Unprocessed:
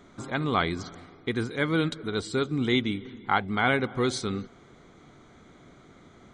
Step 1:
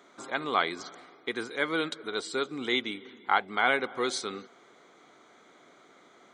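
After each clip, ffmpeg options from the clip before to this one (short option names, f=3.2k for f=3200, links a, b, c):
-af "highpass=430"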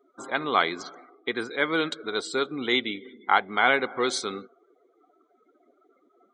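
-af "afftdn=nr=30:nf=-48,volume=4dB"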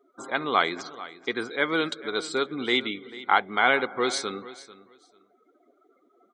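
-af "aecho=1:1:443|886:0.141|0.0254"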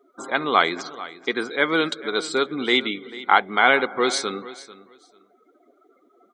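-af "equalizer=f=110:t=o:w=0.31:g=-11.5,volume=4.5dB"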